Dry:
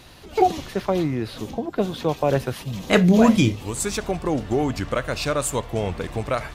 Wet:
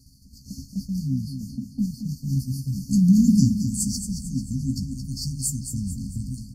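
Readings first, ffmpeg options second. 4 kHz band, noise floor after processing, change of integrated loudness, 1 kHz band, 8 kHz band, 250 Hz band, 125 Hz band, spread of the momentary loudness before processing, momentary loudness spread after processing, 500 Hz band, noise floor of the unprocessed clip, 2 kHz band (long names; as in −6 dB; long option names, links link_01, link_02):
−6.5 dB, −49 dBFS, −2.0 dB, below −40 dB, +1.5 dB, 0.0 dB, +1.5 dB, 12 LU, 15 LU, below −40 dB, −42 dBFS, below −40 dB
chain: -filter_complex "[0:a]acompressor=mode=upward:threshold=-29dB:ratio=2.5,afftfilt=real='re*(1-between(b*sr/4096,270,4300))':imag='im*(1-between(b*sr/4096,270,4300))':win_size=4096:overlap=0.75,agate=range=-33dB:threshold=-31dB:ratio=3:detection=peak,asplit=2[link_01][link_02];[link_02]adelay=15,volume=-8dB[link_03];[link_01][link_03]amix=inputs=2:normalize=0,asplit=2[link_04][link_05];[link_05]aecho=0:1:222|444|666|888|1110:0.376|0.173|0.0795|0.0366|0.0168[link_06];[link_04][link_06]amix=inputs=2:normalize=0"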